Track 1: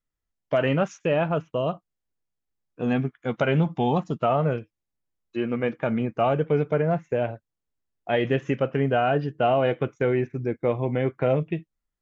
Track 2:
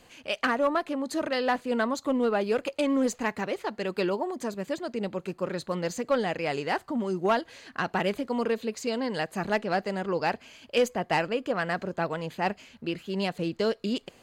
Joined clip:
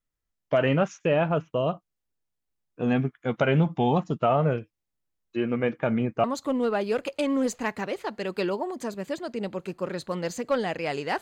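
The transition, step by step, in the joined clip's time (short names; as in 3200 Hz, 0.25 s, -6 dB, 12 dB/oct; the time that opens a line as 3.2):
track 1
6.24 switch to track 2 from 1.84 s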